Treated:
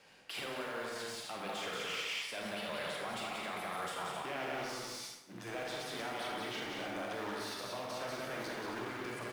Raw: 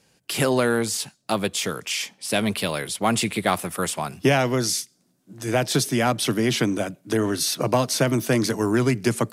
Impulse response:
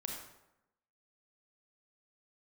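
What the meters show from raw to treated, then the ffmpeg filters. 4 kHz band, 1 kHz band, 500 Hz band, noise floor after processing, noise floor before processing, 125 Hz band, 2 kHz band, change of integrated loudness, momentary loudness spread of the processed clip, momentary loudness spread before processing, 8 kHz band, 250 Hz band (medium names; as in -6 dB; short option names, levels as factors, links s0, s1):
-13.5 dB, -13.0 dB, -17.5 dB, -51 dBFS, -66 dBFS, -26.0 dB, -12.0 dB, -17.0 dB, 4 LU, 6 LU, -21.0 dB, -22.0 dB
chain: -filter_complex "[0:a]asplit=2[s0][s1];[s1]aeval=exprs='(mod(9.44*val(0)+1,2)-1)/9.44':c=same,volume=0.501[s2];[s0][s2]amix=inputs=2:normalize=0,bandreject=f=50:t=h:w=6,bandreject=f=100:t=h:w=6,bandreject=f=150:t=h:w=6,bandreject=f=200:t=h:w=6,aecho=1:1:180.8|265.3:0.631|0.316,areverse,acompressor=threshold=0.0447:ratio=6,areverse,alimiter=level_in=2:limit=0.0631:level=0:latency=1:release=126,volume=0.501,acrusher=bits=4:mode=log:mix=0:aa=0.000001,acrossover=split=490 3900:gain=0.224 1 0.2[s3][s4][s5];[s3][s4][s5]amix=inputs=3:normalize=0[s6];[1:a]atrim=start_sample=2205,asetrate=42777,aresample=44100[s7];[s6][s7]afir=irnorm=-1:irlink=0,volume=1.5"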